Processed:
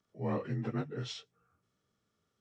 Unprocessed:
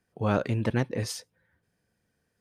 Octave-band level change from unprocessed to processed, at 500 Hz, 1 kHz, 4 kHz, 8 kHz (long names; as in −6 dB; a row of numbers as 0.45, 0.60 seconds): −8.5, −9.5, −5.0, −15.0 decibels